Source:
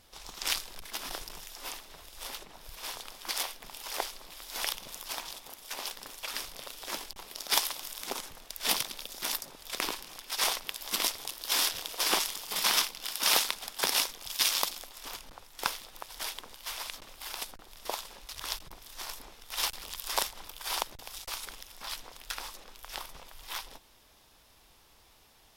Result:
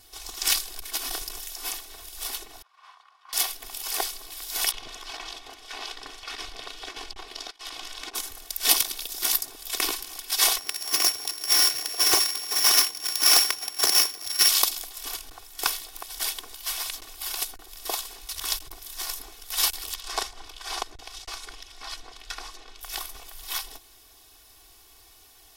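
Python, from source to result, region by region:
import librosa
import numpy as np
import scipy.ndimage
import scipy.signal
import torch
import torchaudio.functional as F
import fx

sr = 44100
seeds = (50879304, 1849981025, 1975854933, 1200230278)

y = fx.chain(x, sr, fx.tube_stage(drive_db=31.0, bias=0.4),
    fx.ladder_bandpass(hz=1200.0, resonance_pct=60), at=(2.62, 3.33))
y = fx.chain(y, sr, fx.lowpass(hz=3700.0, slope=12),
    fx.over_compress(threshold_db=-42.0, ratio=-0.5), at=(4.71, 8.15))
y = fx.chain(y, sr, fx.sample_sort(block=8),
    fx.highpass(hz=86.0, slope=12),
    fx.doppler_dist(depth_ms=0.32), at=(10.58, 14.49))
y = fx.chain(y, sr, fx.lowpass(hz=5100.0, slope=12),
    fx.dynamic_eq(hz=3100.0, q=0.77, threshold_db=-47.0, ratio=4.0, max_db=-5), at=(19.95, 22.81))
y = fx.high_shelf(y, sr, hz=4900.0, db=10.0)
y = y + 0.9 * np.pad(y, (int(2.7 * sr / 1000.0), 0))[:len(y)]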